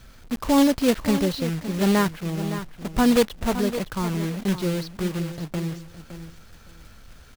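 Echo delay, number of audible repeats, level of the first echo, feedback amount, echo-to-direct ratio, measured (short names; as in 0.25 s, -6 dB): 0.564 s, 2, -11.5 dB, 18%, -11.5 dB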